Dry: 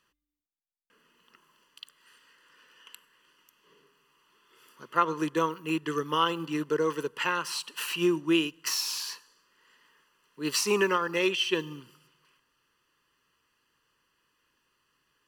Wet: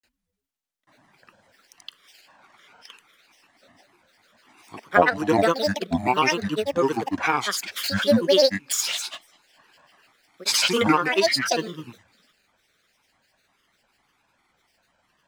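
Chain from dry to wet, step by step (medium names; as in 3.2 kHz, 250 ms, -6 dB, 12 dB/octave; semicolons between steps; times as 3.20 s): granulator, pitch spread up and down by 12 st; trim +7.5 dB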